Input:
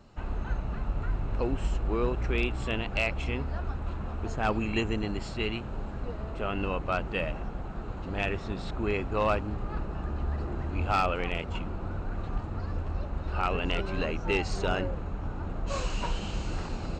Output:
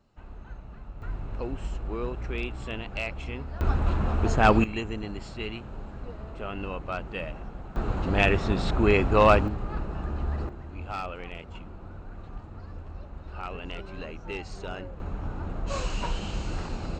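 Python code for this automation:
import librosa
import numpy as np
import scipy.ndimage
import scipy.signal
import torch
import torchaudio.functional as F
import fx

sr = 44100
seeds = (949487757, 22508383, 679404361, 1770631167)

y = fx.gain(x, sr, db=fx.steps((0.0, -11.0), (1.02, -4.0), (3.61, 9.0), (4.64, -3.5), (7.76, 8.5), (9.48, 1.5), (10.49, -8.0), (15.0, 1.0)))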